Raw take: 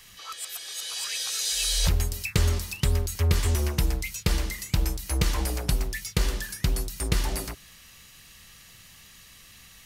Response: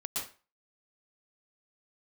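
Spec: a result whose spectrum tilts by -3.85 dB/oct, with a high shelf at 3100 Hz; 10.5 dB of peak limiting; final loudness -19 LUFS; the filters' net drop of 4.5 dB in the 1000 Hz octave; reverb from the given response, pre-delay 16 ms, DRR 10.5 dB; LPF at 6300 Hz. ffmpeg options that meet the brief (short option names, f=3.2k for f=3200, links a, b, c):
-filter_complex "[0:a]lowpass=6.3k,equalizer=f=1k:t=o:g=-7,highshelf=f=3.1k:g=8.5,alimiter=limit=-18dB:level=0:latency=1,asplit=2[a][b];[1:a]atrim=start_sample=2205,adelay=16[c];[b][c]afir=irnorm=-1:irlink=0,volume=-13.5dB[d];[a][d]amix=inputs=2:normalize=0,volume=9.5dB"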